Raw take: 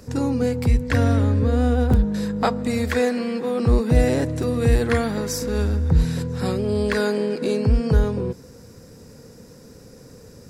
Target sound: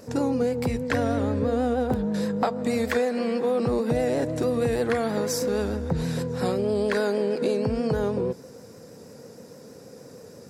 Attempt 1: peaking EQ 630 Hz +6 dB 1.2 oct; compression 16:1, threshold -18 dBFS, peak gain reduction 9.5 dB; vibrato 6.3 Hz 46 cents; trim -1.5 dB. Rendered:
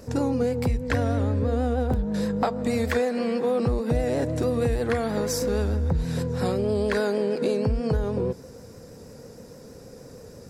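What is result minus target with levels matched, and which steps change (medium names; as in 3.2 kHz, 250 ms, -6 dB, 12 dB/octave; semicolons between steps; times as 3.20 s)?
125 Hz band +4.0 dB
add first: high-pass 140 Hz 12 dB/octave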